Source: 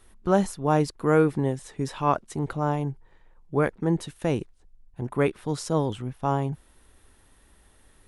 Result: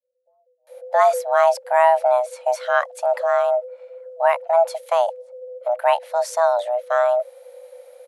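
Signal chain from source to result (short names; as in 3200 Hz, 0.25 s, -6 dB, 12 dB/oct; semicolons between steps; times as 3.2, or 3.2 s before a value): frequency shift +490 Hz; resonant low shelf 710 Hz +9.5 dB, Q 1.5; bands offset in time lows, highs 0.67 s, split 170 Hz; gain +3 dB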